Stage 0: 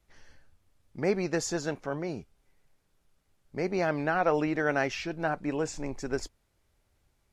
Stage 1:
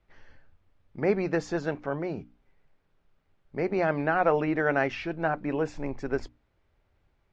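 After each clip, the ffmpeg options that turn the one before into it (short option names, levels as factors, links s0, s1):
-af "lowpass=2800,bandreject=f=60:t=h:w=6,bandreject=f=120:t=h:w=6,bandreject=f=180:t=h:w=6,bandreject=f=240:t=h:w=6,bandreject=f=300:t=h:w=6,volume=1.33"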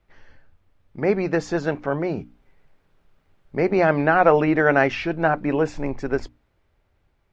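-af "dynaudnorm=f=350:g=9:m=1.68,volume=1.5"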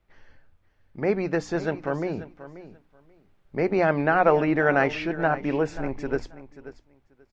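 -af "aecho=1:1:535|1070:0.178|0.0302,volume=0.668"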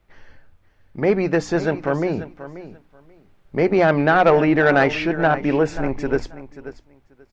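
-af "asoftclip=type=tanh:threshold=0.224,volume=2.24"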